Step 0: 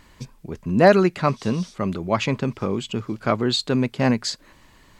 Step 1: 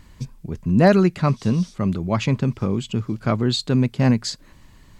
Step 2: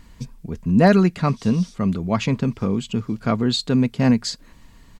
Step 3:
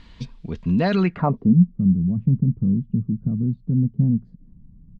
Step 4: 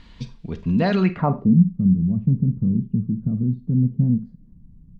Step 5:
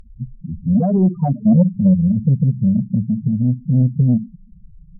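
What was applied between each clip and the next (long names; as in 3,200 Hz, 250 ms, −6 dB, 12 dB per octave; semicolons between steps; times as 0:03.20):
bass and treble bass +10 dB, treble +3 dB; level −3 dB
comb filter 4.3 ms, depth 31%
brickwall limiter −12.5 dBFS, peak gain reduction 9 dB; low-pass filter sweep 3,700 Hz → 170 Hz, 0:00.99–0:01.56
four-comb reverb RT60 0.3 s, combs from 32 ms, DRR 11.5 dB
backwards echo 32 ms −18.5 dB; spectral peaks only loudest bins 4; sine wavefolder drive 4 dB, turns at −5.5 dBFS; level −2 dB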